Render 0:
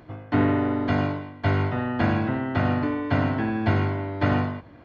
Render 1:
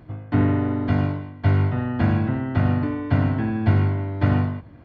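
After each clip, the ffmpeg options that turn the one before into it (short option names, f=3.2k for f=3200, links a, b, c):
-af "bass=f=250:g=9,treble=f=4k:g=-3,volume=-3dB"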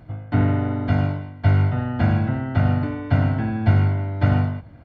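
-af "aecho=1:1:1.4:0.35"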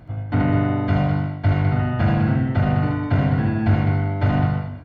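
-filter_complex "[0:a]asoftclip=type=tanh:threshold=-12dB,asplit=2[a][b];[b]aecho=0:1:75.8|204.1:0.708|0.447[c];[a][c]amix=inputs=2:normalize=0,volume=1.5dB"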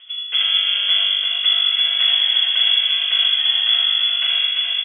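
-af "aecho=1:1:345:0.668,lowpass=f=3k:t=q:w=0.5098,lowpass=f=3k:t=q:w=0.6013,lowpass=f=3k:t=q:w=0.9,lowpass=f=3k:t=q:w=2.563,afreqshift=-3500"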